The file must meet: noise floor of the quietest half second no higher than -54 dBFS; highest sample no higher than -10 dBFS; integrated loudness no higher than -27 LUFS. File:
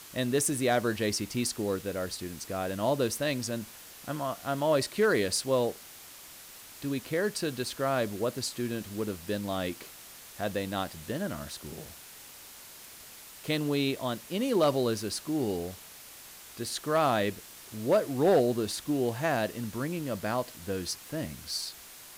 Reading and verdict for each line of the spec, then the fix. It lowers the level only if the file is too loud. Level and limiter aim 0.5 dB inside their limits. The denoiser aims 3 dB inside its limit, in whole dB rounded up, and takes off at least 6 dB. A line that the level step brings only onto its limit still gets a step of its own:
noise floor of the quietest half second -49 dBFS: fail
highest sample -16.0 dBFS: pass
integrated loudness -30.5 LUFS: pass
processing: noise reduction 8 dB, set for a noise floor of -49 dBFS

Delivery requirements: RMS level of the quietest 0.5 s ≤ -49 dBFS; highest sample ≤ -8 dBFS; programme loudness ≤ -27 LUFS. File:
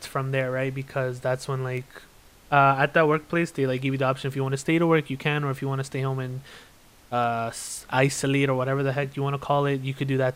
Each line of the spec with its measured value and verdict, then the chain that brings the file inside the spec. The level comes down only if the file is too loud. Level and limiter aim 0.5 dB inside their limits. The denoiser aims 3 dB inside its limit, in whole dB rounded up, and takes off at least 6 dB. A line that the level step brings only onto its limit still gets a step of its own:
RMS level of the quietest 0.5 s -53 dBFS: pass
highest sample -5.5 dBFS: fail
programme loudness -25.0 LUFS: fail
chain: trim -2.5 dB; peak limiter -8.5 dBFS

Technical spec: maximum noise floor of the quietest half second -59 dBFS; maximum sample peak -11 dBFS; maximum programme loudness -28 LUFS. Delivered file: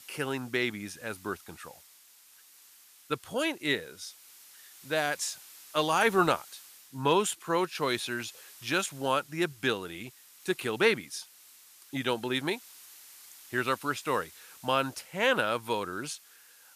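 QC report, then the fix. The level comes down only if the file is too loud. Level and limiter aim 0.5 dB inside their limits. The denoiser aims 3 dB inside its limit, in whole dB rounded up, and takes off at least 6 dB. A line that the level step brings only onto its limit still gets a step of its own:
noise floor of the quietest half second -58 dBFS: fail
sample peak -11.5 dBFS: pass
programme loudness -30.5 LUFS: pass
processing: noise reduction 6 dB, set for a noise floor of -58 dBFS

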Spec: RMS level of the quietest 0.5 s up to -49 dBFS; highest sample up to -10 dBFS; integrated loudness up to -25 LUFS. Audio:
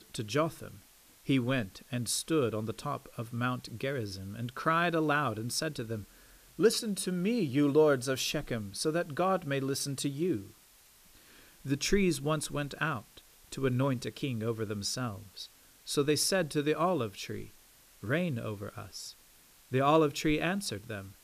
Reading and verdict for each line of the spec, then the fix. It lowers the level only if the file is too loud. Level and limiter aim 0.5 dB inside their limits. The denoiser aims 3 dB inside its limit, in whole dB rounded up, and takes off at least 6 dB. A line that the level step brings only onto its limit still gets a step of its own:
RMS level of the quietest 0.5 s -60 dBFS: pass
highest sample -13.5 dBFS: pass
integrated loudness -31.5 LUFS: pass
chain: none needed

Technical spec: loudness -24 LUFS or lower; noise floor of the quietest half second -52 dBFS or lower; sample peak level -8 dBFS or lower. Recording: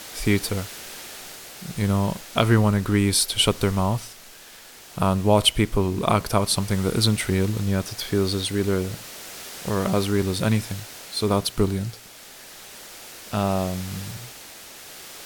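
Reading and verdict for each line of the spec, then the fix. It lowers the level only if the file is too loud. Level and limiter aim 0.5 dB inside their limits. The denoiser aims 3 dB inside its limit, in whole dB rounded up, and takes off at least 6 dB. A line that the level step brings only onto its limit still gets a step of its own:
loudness -23.0 LUFS: fail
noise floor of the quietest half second -45 dBFS: fail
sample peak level -4.0 dBFS: fail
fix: noise reduction 9 dB, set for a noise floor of -45 dBFS; trim -1.5 dB; peak limiter -8.5 dBFS

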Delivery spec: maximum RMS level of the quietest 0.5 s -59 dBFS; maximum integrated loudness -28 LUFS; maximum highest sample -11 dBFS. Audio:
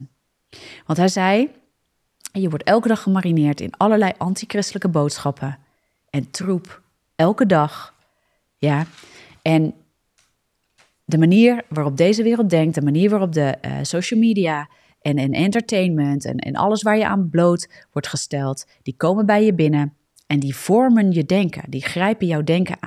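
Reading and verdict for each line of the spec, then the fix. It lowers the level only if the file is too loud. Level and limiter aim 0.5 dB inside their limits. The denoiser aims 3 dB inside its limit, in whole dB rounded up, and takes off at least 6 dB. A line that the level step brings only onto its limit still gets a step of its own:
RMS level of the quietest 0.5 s -70 dBFS: pass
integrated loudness -19.0 LUFS: fail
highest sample -3.5 dBFS: fail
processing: trim -9.5 dB

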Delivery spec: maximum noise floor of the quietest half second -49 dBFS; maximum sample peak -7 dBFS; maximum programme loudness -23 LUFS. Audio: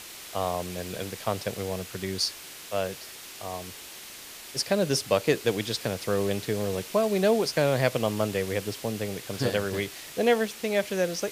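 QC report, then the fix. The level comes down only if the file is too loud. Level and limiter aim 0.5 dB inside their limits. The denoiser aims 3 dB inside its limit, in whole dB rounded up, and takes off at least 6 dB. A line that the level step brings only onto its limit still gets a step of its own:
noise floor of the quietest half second -44 dBFS: fail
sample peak -8.0 dBFS: pass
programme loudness -28.0 LUFS: pass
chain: noise reduction 8 dB, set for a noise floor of -44 dBFS

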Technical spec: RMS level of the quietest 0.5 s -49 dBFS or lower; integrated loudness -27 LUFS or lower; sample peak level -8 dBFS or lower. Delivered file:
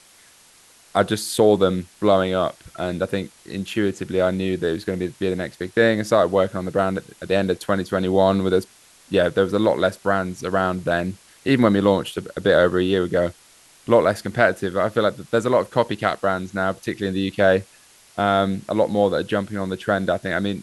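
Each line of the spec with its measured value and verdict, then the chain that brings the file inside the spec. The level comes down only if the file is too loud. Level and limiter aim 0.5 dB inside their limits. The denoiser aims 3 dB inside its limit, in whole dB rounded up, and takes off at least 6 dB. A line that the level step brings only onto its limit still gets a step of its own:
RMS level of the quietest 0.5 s -52 dBFS: pass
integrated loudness -21.0 LUFS: fail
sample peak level -1.5 dBFS: fail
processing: trim -6.5 dB; peak limiter -8.5 dBFS

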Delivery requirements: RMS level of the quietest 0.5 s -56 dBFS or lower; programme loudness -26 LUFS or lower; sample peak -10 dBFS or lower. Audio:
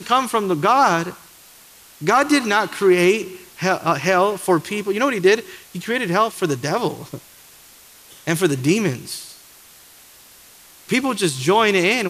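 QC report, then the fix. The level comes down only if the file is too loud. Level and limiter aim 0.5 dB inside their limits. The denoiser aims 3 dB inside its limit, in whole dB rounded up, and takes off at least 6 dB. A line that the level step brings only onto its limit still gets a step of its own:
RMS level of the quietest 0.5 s -47 dBFS: fail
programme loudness -18.5 LUFS: fail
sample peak -4.5 dBFS: fail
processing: noise reduction 6 dB, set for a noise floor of -47 dBFS; trim -8 dB

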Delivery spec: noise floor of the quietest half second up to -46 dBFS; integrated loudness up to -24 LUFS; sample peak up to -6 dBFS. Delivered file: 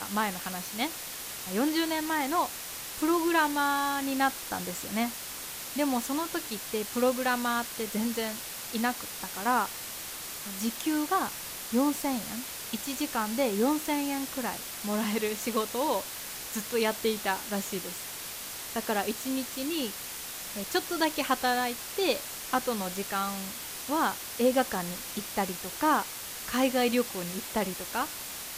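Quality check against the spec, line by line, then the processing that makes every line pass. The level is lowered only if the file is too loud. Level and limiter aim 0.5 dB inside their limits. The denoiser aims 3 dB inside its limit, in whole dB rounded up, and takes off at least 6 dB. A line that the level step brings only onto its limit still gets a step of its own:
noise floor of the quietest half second -40 dBFS: fail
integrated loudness -30.0 LUFS: pass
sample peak -13.5 dBFS: pass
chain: noise reduction 9 dB, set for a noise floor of -40 dBFS

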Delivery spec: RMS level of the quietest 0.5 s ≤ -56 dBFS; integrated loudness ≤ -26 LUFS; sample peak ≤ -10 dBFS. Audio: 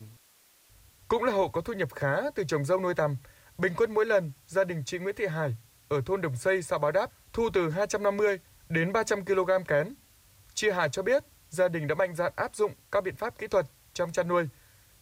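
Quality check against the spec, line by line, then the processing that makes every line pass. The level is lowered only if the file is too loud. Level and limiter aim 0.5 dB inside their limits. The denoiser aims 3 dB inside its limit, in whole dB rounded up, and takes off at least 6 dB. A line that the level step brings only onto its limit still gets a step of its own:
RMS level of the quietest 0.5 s -62 dBFS: pass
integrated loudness -29.0 LUFS: pass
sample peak -15.5 dBFS: pass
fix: none needed

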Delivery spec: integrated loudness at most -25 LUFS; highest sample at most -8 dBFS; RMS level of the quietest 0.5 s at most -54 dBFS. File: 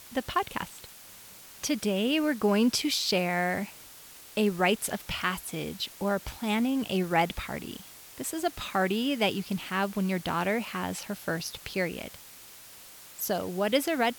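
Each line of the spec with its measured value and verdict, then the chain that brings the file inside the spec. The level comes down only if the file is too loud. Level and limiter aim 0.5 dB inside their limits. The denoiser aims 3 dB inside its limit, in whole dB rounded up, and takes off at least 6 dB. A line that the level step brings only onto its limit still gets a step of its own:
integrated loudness -29.0 LUFS: pass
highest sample -11.5 dBFS: pass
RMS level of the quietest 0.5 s -49 dBFS: fail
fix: noise reduction 8 dB, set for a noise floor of -49 dBFS

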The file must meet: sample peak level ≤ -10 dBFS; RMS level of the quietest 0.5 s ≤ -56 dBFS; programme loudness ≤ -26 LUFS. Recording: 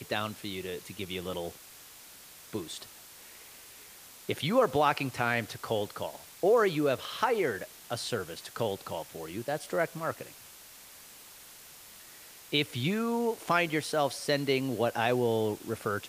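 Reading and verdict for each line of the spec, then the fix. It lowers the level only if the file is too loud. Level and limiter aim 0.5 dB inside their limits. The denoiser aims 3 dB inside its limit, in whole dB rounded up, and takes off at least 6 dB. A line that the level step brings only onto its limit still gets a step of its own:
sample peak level -13.0 dBFS: pass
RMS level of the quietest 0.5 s -51 dBFS: fail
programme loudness -31.0 LUFS: pass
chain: noise reduction 8 dB, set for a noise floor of -51 dBFS

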